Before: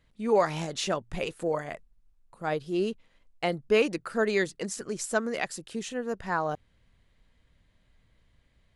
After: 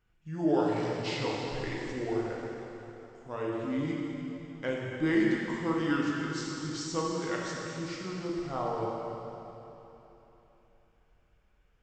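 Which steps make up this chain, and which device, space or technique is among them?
slowed and reverbed (varispeed -26%; reverb RT60 3.4 s, pre-delay 4 ms, DRR -4 dB); gain -8 dB

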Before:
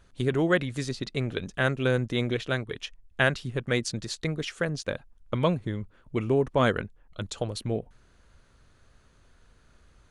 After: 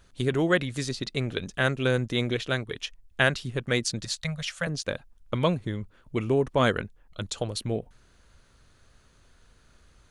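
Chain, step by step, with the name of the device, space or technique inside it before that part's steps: 4.05–4.67 elliptic band-stop 190–550 Hz; presence and air boost (bell 4400 Hz +3 dB 1.9 oct; high shelf 9500 Hz +6.5 dB)

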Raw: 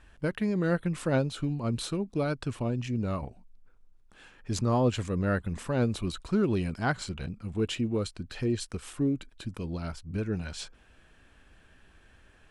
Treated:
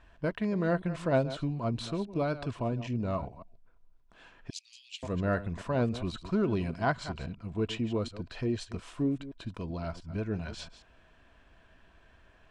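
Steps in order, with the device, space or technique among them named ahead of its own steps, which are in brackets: reverse delay 0.137 s, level -13.5 dB; 4.5–5.03 steep high-pass 2500 Hz 48 dB/oct; inside a cardboard box (LPF 5600 Hz 12 dB/oct; small resonant body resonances 670/990 Hz, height 10 dB, ringing for 40 ms); gain -2.5 dB

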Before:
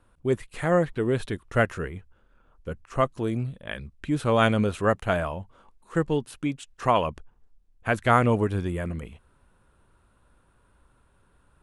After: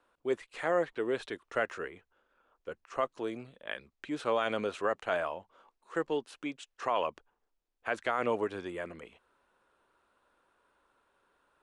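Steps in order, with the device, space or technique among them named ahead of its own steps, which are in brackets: DJ mixer with the lows and highs turned down (three-band isolator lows -23 dB, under 310 Hz, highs -23 dB, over 7900 Hz; limiter -15 dBFS, peak gain reduction 10 dB); gain -3.5 dB

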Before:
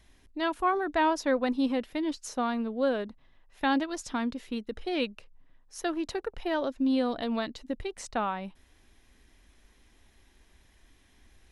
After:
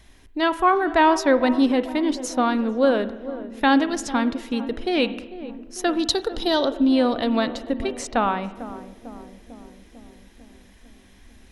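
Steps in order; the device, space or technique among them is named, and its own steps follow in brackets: 5.99–6.65 resonant high shelf 3000 Hz +7.5 dB, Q 3; dub delay into a spring reverb (darkening echo 0.448 s, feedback 71%, low-pass 810 Hz, level -13 dB; spring tank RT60 1 s, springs 40/50 ms, chirp 60 ms, DRR 13.5 dB); gain +8.5 dB

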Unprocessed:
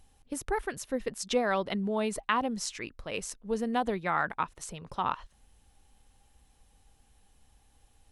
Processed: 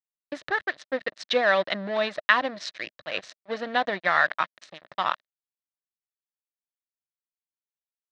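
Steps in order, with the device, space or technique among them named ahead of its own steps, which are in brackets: blown loudspeaker (crossover distortion -40 dBFS; speaker cabinet 210–4800 Hz, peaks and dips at 230 Hz -8 dB, 420 Hz -8 dB, 610 Hz +7 dB, 880 Hz -6 dB, 1800 Hz +10 dB, 3900 Hz +8 dB); gain +6.5 dB

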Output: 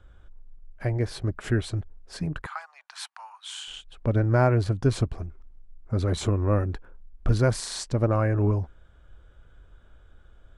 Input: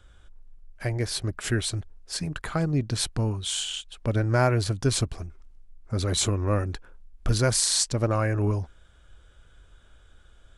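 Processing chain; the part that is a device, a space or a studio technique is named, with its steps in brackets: 2.46–3.68 steep high-pass 840 Hz 48 dB/oct; through cloth (high shelf 2700 Hz -16 dB); gain +2 dB

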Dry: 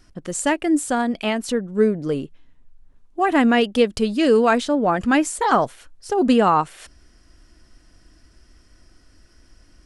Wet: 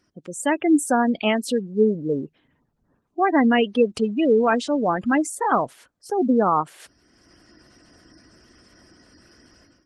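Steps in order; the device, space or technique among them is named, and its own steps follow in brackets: noise-suppressed video call (HPF 130 Hz 12 dB/oct; spectral gate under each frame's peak -20 dB strong; AGC gain up to 15 dB; gain -7 dB; Opus 20 kbps 48000 Hz)

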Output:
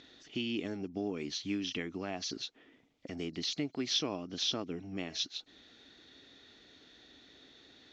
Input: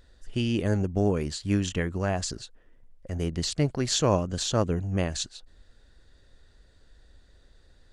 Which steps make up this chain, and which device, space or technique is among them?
4.65–5.18 de-hum 216.6 Hz, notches 29; hearing aid with frequency lowering (nonlinear frequency compression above 3900 Hz 1.5:1; compressor 3:1, threshold -43 dBFS, peak gain reduction 18.5 dB; speaker cabinet 260–6600 Hz, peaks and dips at 280 Hz +7 dB, 540 Hz -9 dB, 990 Hz -5 dB, 1600 Hz -6 dB, 2300 Hz +6 dB, 3400 Hz +7 dB); gain +7 dB

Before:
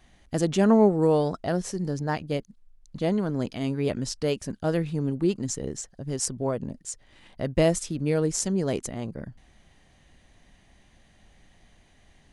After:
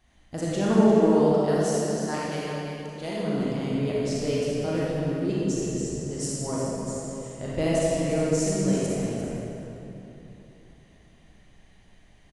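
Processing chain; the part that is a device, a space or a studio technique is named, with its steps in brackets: 1.33–3.17 tilt +2.5 dB/oct; cave (echo 0.347 s -10.5 dB; reverb RT60 3.1 s, pre-delay 30 ms, DRR -7 dB); gain -7.5 dB

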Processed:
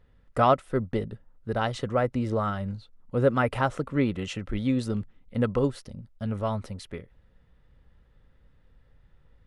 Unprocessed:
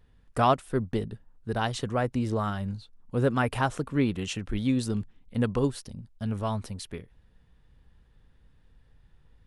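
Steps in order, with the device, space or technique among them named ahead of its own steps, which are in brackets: inside a helmet (high shelf 5800 Hz -9.5 dB; small resonant body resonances 550/1300/2000 Hz, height 7 dB, ringing for 25 ms)

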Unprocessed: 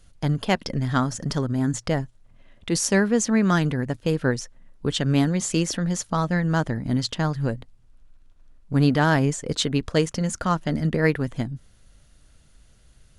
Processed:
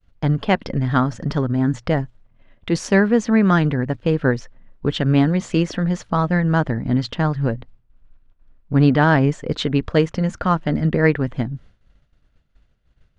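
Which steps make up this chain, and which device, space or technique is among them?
hearing-loss simulation (LPF 2900 Hz 12 dB/oct; expander -44 dBFS); 1.9–3.12 high shelf 8900 Hz +8.5 dB; gain +4.5 dB

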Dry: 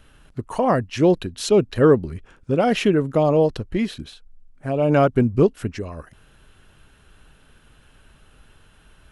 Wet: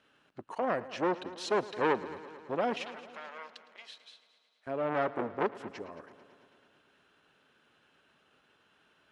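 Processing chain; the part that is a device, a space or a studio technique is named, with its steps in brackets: public-address speaker with an overloaded transformer (core saturation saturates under 1100 Hz; BPF 270–5300 Hz); 2.74–4.67 Bessel high-pass 2400 Hz, order 2; multi-head echo 0.11 s, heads first and second, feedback 61%, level -19 dB; gain -9 dB

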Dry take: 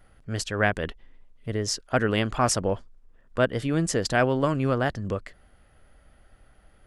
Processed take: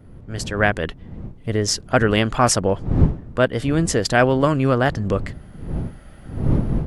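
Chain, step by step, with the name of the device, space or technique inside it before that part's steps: smartphone video outdoors (wind noise 160 Hz -33 dBFS; AGC gain up to 14 dB; gain -1.5 dB; AAC 96 kbps 48000 Hz)

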